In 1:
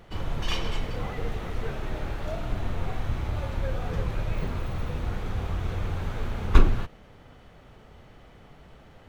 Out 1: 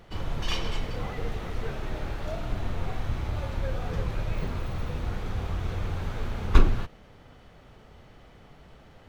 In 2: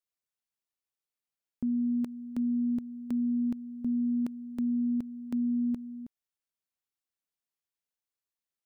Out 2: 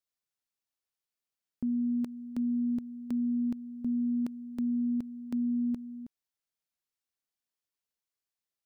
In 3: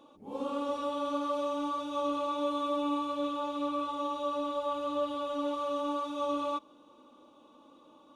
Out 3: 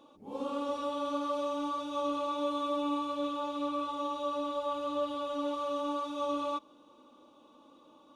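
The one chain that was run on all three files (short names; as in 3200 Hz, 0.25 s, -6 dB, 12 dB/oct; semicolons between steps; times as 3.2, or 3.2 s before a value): bell 4900 Hz +2.5 dB; gain -1 dB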